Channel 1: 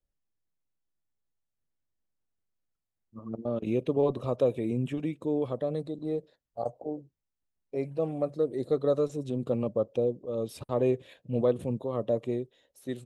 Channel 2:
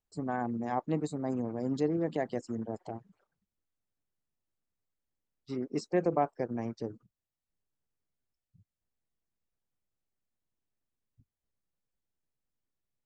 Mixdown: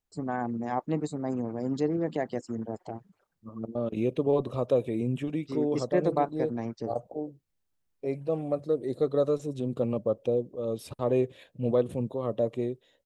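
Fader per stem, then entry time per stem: +0.5 dB, +2.0 dB; 0.30 s, 0.00 s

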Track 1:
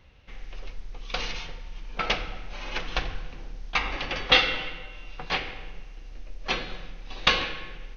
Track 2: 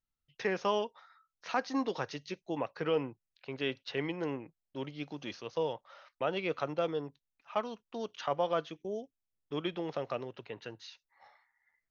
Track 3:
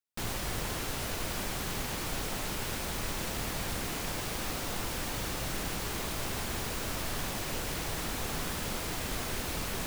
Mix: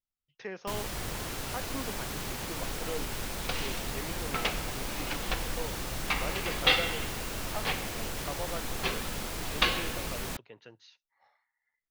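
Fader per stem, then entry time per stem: -5.0 dB, -7.5 dB, -1.5 dB; 2.35 s, 0.00 s, 0.50 s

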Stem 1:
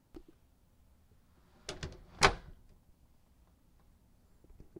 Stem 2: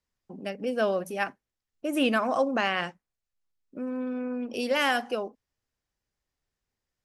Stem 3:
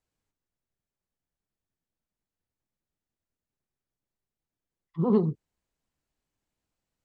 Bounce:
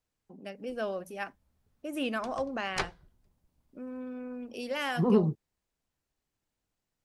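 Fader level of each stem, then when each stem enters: -7.5 dB, -8.0 dB, -1.0 dB; 0.55 s, 0.00 s, 0.00 s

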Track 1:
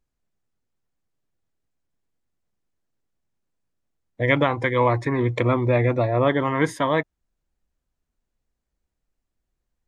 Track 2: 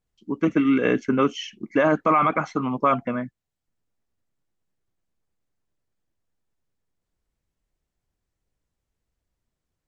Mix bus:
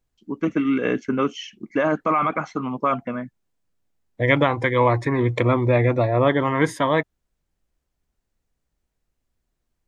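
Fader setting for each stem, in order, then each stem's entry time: +1.5 dB, -1.5 dB; 0.00 s, 0.00 s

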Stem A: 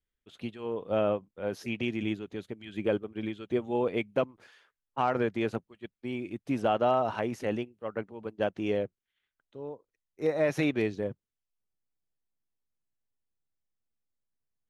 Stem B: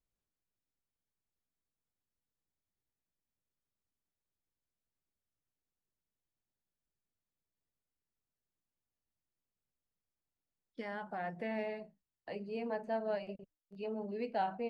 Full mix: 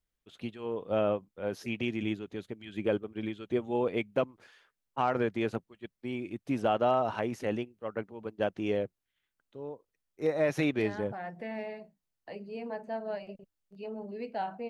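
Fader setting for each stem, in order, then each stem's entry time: -1.0 dB, 0.0 dB; 0.00 s, 0.00 s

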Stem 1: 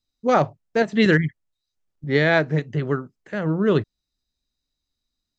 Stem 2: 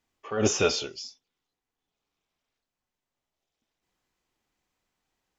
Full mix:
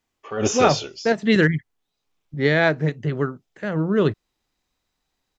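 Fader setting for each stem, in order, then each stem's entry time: 0.0 dB, +2.0 dB; 0.30 s, 0.00 s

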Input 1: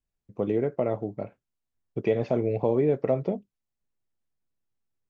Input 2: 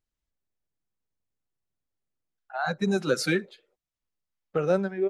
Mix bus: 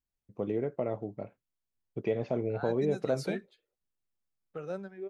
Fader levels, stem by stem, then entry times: -6.0 dB, -14.0 dB; 0.00 s, 0.00 s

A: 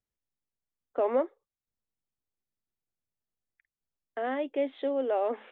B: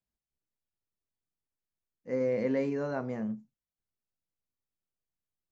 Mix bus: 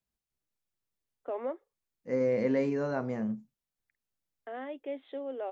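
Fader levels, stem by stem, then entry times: -8.5 dB, +1.5 dB; 0.30 s, 0.00 s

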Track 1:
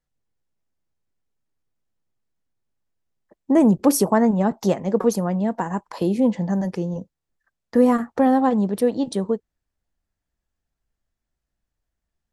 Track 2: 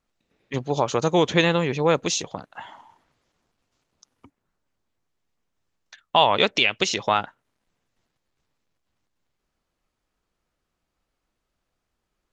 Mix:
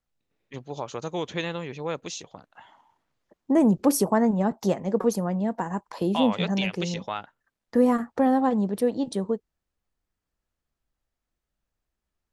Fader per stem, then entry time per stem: -4.0 dB, -11.0 dB; 0.00 s, 0.00 s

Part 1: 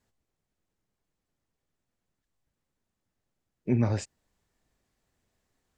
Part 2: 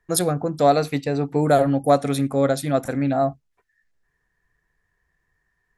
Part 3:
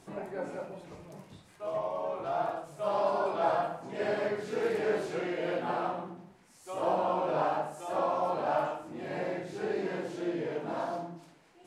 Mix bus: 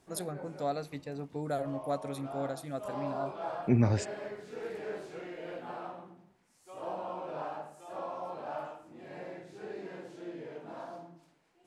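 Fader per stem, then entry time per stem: 0.0 dB, -17.0 dB, -9.5 dB; 0.00 s, 0.00 s, 0.00 s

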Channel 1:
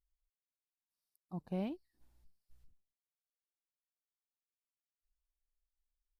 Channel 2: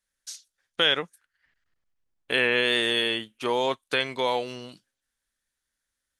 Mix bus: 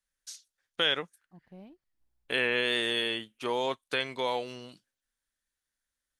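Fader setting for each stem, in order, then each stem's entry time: -12.0 dB, -5.0 dB; 0.00 s, 0.00 s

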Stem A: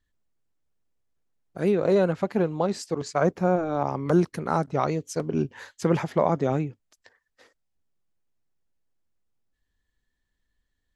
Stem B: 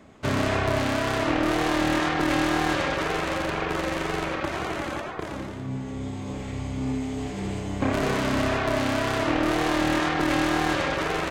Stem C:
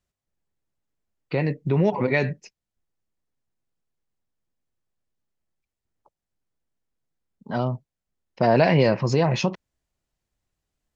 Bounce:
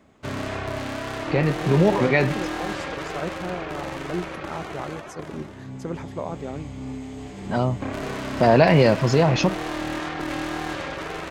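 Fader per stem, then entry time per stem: -9.0 dB, -5.5 dB, +2.5 dB; 0.00 s, 0.00 s, 0.00 s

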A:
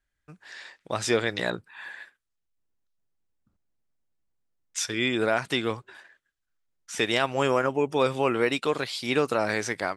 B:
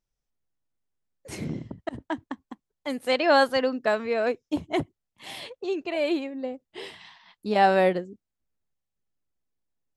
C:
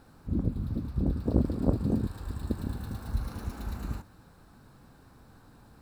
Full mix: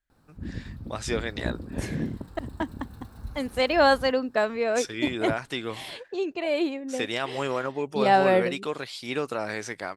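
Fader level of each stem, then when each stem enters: -5.0 dB, 0.0 dB, -7.0 dB; 0.00 s, 0.50 s, 0.10 s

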